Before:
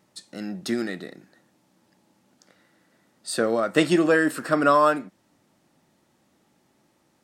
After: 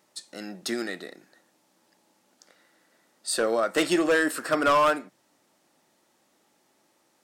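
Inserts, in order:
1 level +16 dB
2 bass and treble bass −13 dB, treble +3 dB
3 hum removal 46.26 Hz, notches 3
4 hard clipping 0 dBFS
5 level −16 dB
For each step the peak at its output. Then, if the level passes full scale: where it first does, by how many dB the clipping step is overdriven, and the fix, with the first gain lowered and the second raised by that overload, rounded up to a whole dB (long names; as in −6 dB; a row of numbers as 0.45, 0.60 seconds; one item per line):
+10.0, +9.5, +9.5, 0.0, −16.0 dBFS
step 1, 9.5 dB
step 1 +6 dB, step 5 −6 dB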